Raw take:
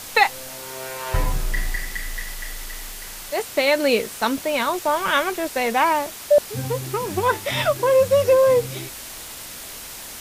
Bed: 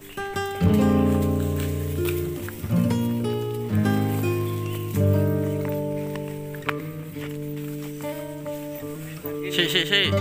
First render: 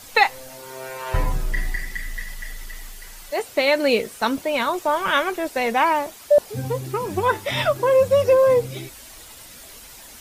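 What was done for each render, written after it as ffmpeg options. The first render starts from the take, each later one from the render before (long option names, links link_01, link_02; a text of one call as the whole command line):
ffmpeg -i in.wav -af "afftdn=noise_reduction=9:noise_floor=-37" out.wav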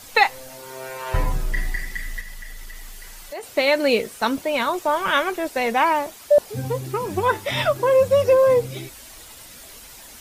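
ffmpeg -i in.wav -filter_complex "[0:a]asettb=1/sr,asplit=3[link_01][link_02][link_03];[link_01]atrim=end=2.204[link_04];[link_02]atrim=start=2.2:end=3.43,asetpts=PTS-STARTPTS,afade=type=in:duration=0.004:curve=qsin,afade=type=out:start_time=1.226:duration=0.004:curve=qsin,acompressor=threshold=-33dB:ratio=2.5:attack=3.2:release=140:knee=1:detection=peak[link_05];[link_03]atrim=start=3.426[link_06];[link_04][link_05]acrossfade=duration=0.004:curve1=hsin:curve2=qsin[link_07];[link_07][link_06]acrossfade=duration=0.004:curve1=qsin:curve2=hsin" out.wav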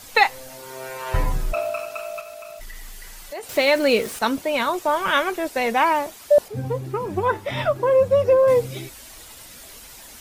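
ffmpeg -i in.wav -filter_complex "[0:a]asplit=3[link_01][link_02][link_03];[link_01]afade=type=out:start_time=1.52:duration=0.02[link_04];[link_02]aeval=exprs='val(0)*sin(2*PI*640*n/s)':channel_layout=same,afade=type=in:start_time=1.52:duration=0.02,afade=type=out:start_time=2.59:duration=0.02[link_05];[link_03]afade=type=in:start_time=2.59:duration=0.02[link_06];[link_04][link_05][link_06]amix=inputs=3:normalize=0,asettb=1/sr,asplit=3[link_07][link_08][link_09];[link_07]atrim=end=3.494[link_10];[link_08]atrim=start=3.49:end=4.19,asetpts=PTS-STARTPTS,afade=type=in:duration=0.004:curve=qsin,afade=type=out:start_time=0.696:duration=0.004:curve=qsin,aeval=exprs='val(0)+0.5*0.0251*sgn(val(0))':channel_layout=same[link_11];[link_09]atrim=start=4.186[link_12];[link_10][link_11]acrossfade=duration=0.004:curve1=hsin:curve2=qsin[link_13];[link_13][link_12]acrossfade=duration=0.004:curve1=qsin:curve2=hsin,asettb=1/sr,asplit=3[link_14][link_15][link_16];[link_14]atrim=end=6.484[link_17];[link_15]atrim=start=6.48:end=8.48,asetpts=PTS-STARTPTS,afade=type=in:duration=0.004:curve=qsin,afade=type=out:start_time=1.996:duration=0.004:curve=qsin,highshelf=frequency=2500:gain=-11[link_18];[link_16]atrim=start=8.476[link_19];[link_17][link_18]acrossfade=duration=0.004:curve1=hsin:curve2=qsin[link_20];[link_20][link_19]acrossfade=duration=0.004:curve1=qsin:curve2=hsin" out.wav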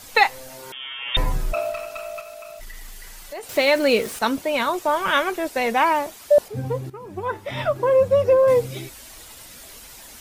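ffmpeg -i in.wav -filter_complex "[0:a]asettb=1/sr,asplit=3[link_01][link_02][link_03];[link_01]atrim=end=0.724[link_04];[link_02]atrim=start=0.72:end=1.17,asetpts=PTS-STARTPTS,afade=type=in:duration=0.004:curve=qsin,afade=type=out:start_time=0.446:duration=0.004:curve=qsin,lowpass=frequency=3100:width_type=q:width=0.5098,lowpass=frequency=3100:width_type=q:width=0.6013,lowpass=frequency=3100:width_type=q:width=0.9,lowpass=frequency=3100:width_type=q:width=2.563,afreqshift=-3700[link_05];[link_03]atrim=start=1.166[link_06];[link_04][link_05]acrossfade=duration=0.004:curve1=hsin:curve2=qsin[link_07];[link_07][link_06]acrossfade=duration=0.004:curve1=qsin:curve2=hsin,asettb=1/sr,asplit=3[link_08][link_09][link_10];[link_08]atrim=end=1.724[link_11];[link_09]atrim=start=1.72:end=3.56,asetpts=PTS-STARTPTS,afade=type=in:duration=0.004:curve=qsin,afade=type=out:start_time=1.836:duration=0.004:curve=qsin,aeval=exprs='(tanh(12.6*val(0)+0.2)-tanh(0.2))/12.6':channel_layout=same[link_12];[link_10]atrim=start=3.556[link_13];[link_11][link_12]acrossfade=duration=0.004:curve1=hsin:curve2=qsin[link_14];[link_14][link_13]acrossfade=duration=0.004:curve1=qsin:curve2=hsin,asplit=2[link_15][link_16];[link_15]atrim=end=6.9,asetpts=PTS-STARTPTS,afade=type=out:start_time=6.896:duration=0.004:curve=hsin:silence=0.188365[link_17];[link_16]atrim=start=6.9,asetpts=PTS-STARTPTS,afade=type=in:duration=0.92:silence=0.188365[link_18];[link_17][link_18]concat=n=2:v=0:a=1" out.wav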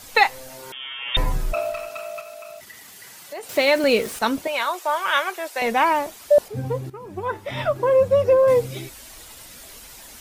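ffmpeg -i in.wav -filter_complex "[0:a]asettb=1/sr,asplit=3[link_01][link_02][link_03];[link_01]atrim=end=1.894[link_04];[link_02]atrim=start=1.89:end=3.84,asetpts=PTS-STARTPTS,afade=type=in:duration=0.004:curve=qsin,afade=type=out:start_time=1.946:duration=0.004:curve=qsin,highpass=frequency=98:width=0.5412,highpass=frequency=98:width=1.3066[link_05];[link_03]atrim=start=3.836[link_06];[link_04][link_05]acrossfade=duration=0.004:curve1=hsin:curve2=qsin[link_07];[link_07][link_06]acrossfade=duration=0.004:curve1=qsin:curve2=hsin,asettb=1/sr,asplit=3[link_08][link_09][link_10];[link_08]atrim=end=4.474[link_11];[link_09]atrim=start=4.47:end=5.62,asetpts=PTS-STARTPTS,afade=type=in:duration=0.004:curve=qsin,afade=type=out:start_time=1.146:duration=0.004:curve=qsin,highpass=650[link_12];[link_10]atrim=start=5.616[link_13];[link_11][link_12]acrossfade=duration=0.004:curve1=hsin:curve2=qsin[link_14];[link_14][link_13]acrossfade=duration=0.004:curve1=qsin:curve2=hsin" out.wav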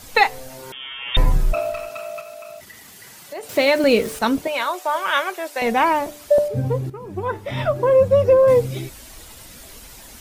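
ffmpeg -i in.wav -af "lowshelf=frequency=380:gain=7,bandreject=frequency=147.6:width_type=h:width=4,bandreject=frequency=295.2:width_type=h:width=4,bandreject=frequency=442.8:width_type=h:width=4,bandreject=frequency=590.4:width_type=h:width=4,bandreject=frequency=738:width_type=h:width=4" out.wav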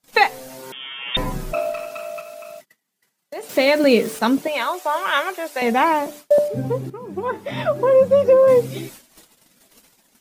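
ffmpeg -i in.wav -af "agate=range=-34dB:threshold=-38dB:ratio=16:detection=peak,lowshelf=frequency=120:width_type=q:width=1.5:gain=-14" out.wav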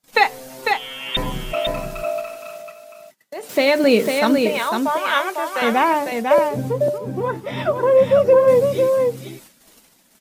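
ffmpeg -i in.wav -af "aecho=1:1:500:0.596" out.wav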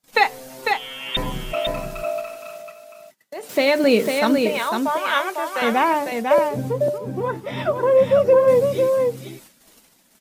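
ffmpeg -i in.wav -af "volume=-1.5dB" out.wav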